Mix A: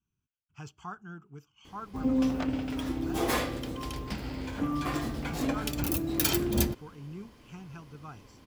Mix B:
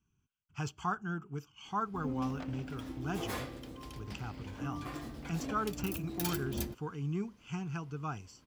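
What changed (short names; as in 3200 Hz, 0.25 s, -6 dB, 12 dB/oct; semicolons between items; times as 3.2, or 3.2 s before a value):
speech +7.0 dB; background -10.5 dB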